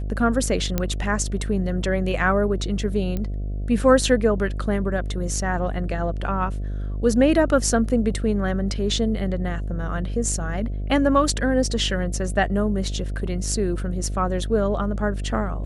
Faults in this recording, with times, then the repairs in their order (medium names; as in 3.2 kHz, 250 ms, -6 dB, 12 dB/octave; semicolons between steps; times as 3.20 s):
buzz 50 Hz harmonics 14 -27 dBFS
0.78 s: pop -8 dBFS
3.17 s: pop -15 dBFS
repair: de-click; de-hum 50 Hz, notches 14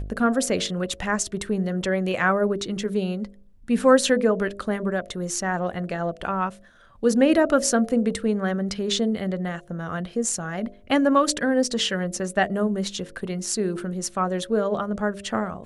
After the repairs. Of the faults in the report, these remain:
nothing left